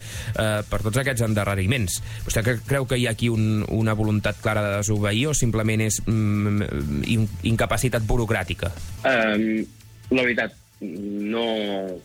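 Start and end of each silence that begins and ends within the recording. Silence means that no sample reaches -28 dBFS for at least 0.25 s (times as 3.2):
9.65–10.12
10.48–10.82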